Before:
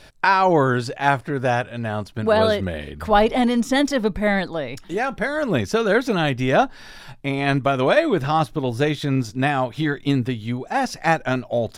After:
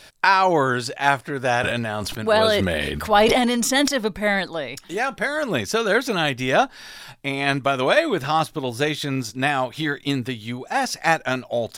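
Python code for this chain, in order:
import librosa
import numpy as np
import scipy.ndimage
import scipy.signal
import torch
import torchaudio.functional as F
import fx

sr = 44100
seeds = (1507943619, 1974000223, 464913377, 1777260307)

y = fx.tilt_eq(x, sr, slope=2.0)
y = fx.sustainer(y, sr, db_per_s=21.0, at=(1.42, 3.88))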